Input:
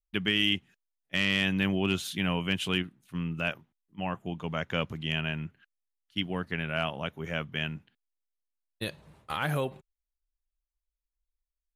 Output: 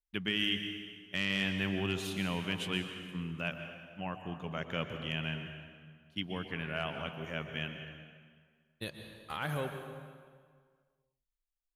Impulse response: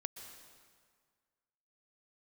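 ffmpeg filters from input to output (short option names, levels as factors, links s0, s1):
-filter_complex "[1:a]atrim=start_sample=2205[s0];[0:a][s0]afir=irnorm=-1:irlink=0,volume=0.708"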